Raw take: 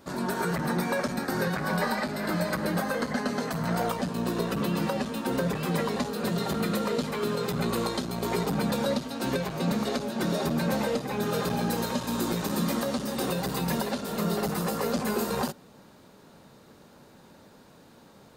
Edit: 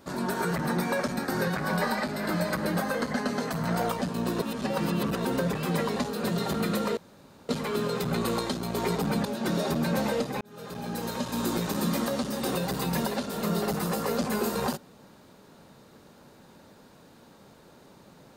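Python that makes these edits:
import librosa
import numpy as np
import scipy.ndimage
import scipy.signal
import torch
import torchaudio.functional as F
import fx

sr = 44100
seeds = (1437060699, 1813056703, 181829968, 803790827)

y = fx.edit(x, sr, fx.reverse_span(start_s=4.42, length_s=0.83),
    fx.insert_room_tone(at_s=6.97, length_s=0.52),
    fx.cut(start_s=8.73, length_s=1.27),
    fx.fade_in_span(start_s=11.16, length_s=1.0), tone=tone)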